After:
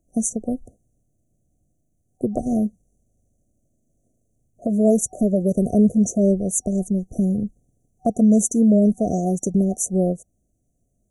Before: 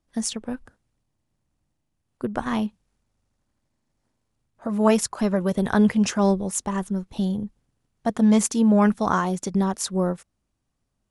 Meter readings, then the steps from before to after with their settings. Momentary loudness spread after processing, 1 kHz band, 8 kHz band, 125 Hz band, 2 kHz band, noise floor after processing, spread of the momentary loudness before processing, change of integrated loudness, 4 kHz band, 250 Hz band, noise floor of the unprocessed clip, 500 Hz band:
11 LU, -6.0 dB, +4.0 dB, +3.5 dB, under -40 dB, -70 dBFS, 13 LU, +2.5 dB, under -40 dB, +3.0 dB, -77 dBFS, +3.0 dB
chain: FFT band-reject 750–5800 Hz; in parallel at +2.5 dB: compression, threshold -28 dBFS, peak gain reduction 14 dB

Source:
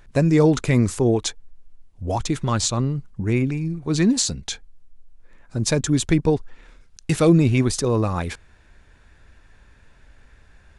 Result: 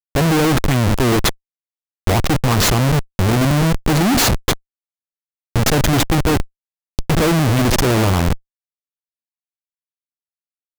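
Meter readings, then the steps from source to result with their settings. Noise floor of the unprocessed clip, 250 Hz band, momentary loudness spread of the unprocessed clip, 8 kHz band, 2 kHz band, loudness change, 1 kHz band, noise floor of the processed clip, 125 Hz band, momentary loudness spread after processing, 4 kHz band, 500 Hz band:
-53 dBFS, +2.5 dB, 15 LU, +4.0 dB, +10.0 dB, +4.5 dB, +10.0 dB, under -85 dBFS, +5.0 dB, 8 LU, +8.5 dB, +2.5 dB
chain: self-modulated delay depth 0.095 ms; delay 75 ms -18 dB; Schmitt trigger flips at -25 dBFS; trim +8.5 dB

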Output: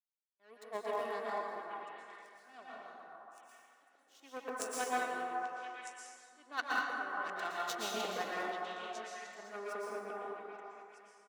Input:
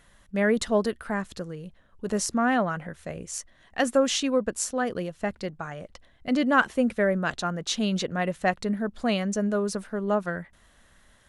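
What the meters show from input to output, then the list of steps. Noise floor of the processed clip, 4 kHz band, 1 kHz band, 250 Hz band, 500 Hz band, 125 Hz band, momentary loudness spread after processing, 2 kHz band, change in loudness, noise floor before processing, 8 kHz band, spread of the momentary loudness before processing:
-70 dBFS, -13.0 dB, -8.0 dB, -25.5 dB, -15.5 dB, under -25 dB, 18 LU, -10.0 dB, -13.0 dB, -60 dBFS, -14.5 dB, 15 LU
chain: slow attack 677 ms; power-law waveshaper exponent 2; gate with hold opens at -60 dBFS; plate-style reverb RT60 2.3 s, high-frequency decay 0.45×, pre-delay 105 ms, DRR -6.5 dB; in parallel at -5 dB: Schmitt trigger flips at -24 dBFS; on the sum: high-pass 360 Hz 12 dB/octave; comb 2.7 ms, depth 39%; on a send: repeats whose band climbs or falls 418 ms, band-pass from 940 Hz, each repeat 1.4 oct, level -3 dB; on the sum: trim -5.5 dB

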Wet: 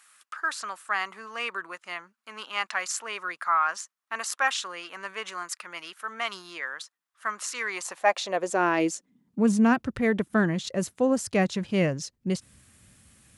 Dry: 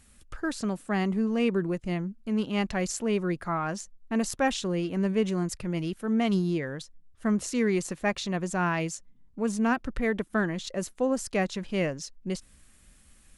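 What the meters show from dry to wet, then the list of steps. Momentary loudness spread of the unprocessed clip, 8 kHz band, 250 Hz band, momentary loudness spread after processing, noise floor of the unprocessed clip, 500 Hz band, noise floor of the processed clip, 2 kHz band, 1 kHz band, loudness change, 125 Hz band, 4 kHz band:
8 LU, +2.5 dB, -1.5 dB, 13 LU, -58 dBFS, -0.5 dB, -84 dBFS, +5.0 dB, +5.0 dB, +1.0 dB, -3.0 dB, +3.0 dB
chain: high-pass sweep 1.2 kHz -> 100 Hz, 7.61–9.94 s; trim +2.5 dB

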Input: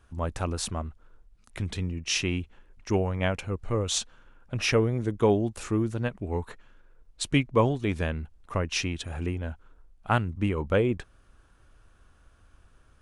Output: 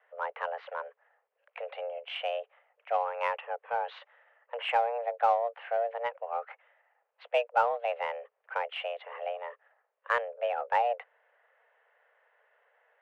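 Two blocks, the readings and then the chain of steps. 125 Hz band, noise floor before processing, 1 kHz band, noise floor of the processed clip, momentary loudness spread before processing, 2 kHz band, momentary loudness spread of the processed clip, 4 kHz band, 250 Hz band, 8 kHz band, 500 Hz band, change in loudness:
under -40 dB, -60 dBFS, +5.5 dB, -80 dBFS, 13 LU, -2.0 dB, 13 LU, -9.0 dB, under -40 dB, under -30 dB, -3.0 dB, -4.0 dB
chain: mistuned SSB +350 Hz 150–2400 Hz; in parallel at -9.5 dB: saturation -25.5 dBFS, distortion -7 dB; on the sum: trim -4 dB

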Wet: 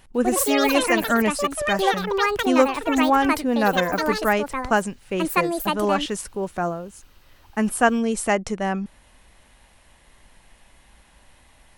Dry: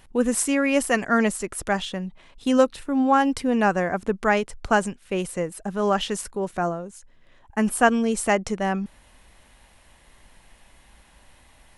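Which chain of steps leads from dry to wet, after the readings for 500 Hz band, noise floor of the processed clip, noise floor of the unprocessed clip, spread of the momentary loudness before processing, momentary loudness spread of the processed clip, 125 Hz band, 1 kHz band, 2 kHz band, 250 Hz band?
+1.5 dB, -55 dBFS, -55 dBFS, 10 LU, 10 LU, 0.0 dB, +2.5 dB, +2.5 dB, +0.5 dB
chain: ever faster or slower copies 145 ms, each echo +7 st, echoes 2

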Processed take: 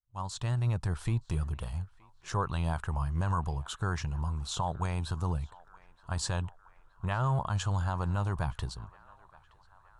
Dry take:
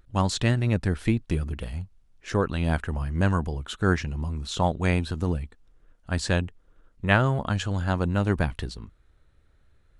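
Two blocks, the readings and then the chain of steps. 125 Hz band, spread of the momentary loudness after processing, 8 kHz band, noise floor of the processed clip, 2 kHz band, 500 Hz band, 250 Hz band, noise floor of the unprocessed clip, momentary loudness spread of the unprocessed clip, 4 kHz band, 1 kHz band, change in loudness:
-5.0 dB, 10 LU, -3.0 dB, -62 dBFS, -12.0 dB, -11.5 dB, -11.5 dB, -61 dBFS, 12 LU, -7.0 dB, -4.0 dB, -6.5 dB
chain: fade-in on the opening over 0.90 s; graphic EQ 125/250/500/1000/2000/8000 Hz +6/-10/-4/+11/-8/+4 dB; peak limiter -16.5 dBFS, peak gain reduction 11.5 dB; on a send: band-passed feedback delay 921 ms, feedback 69%, band-pass 1.3 kHz, level -20 dB; on the sum: trim -4 dB

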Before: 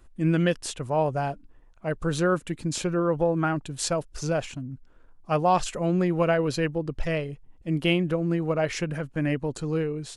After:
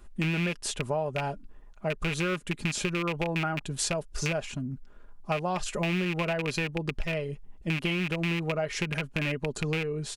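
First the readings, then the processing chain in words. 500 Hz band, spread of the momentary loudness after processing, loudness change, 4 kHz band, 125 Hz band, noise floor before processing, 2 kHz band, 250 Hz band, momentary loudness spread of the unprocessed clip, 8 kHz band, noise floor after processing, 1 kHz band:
-6.0 dB, 7 LU, -4.0 dB, +1.0 dB, -3.5 dB, -53 dBFS, +2.0 dB, -5.5 dB, 9 LU, -0.5 dB, -50 dBFS, -6.5 dB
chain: rattle on loud lows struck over -29 dBFS, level -15 dBFS; comb 4.9 ms, depth 43%; compression, threshold -29 dBFS, peak gain reduction 12 dB; trim +2.5 dB

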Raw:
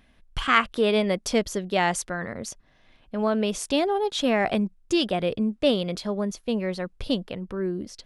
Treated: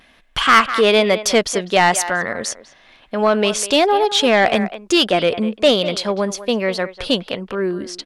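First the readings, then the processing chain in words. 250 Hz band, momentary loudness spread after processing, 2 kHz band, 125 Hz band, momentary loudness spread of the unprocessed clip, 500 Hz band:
+4.5 dB, 10 LU, +10.0 dB, +3.5 dB, 10 LU, +8.5 dB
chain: vibrato 1.1 Hz 37 cents; speakerphone echo 200 ms, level -14 dB; overdrive pedal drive 16 dB, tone 7.7 kHz, clips at -4 dBFS; trim +3 dB

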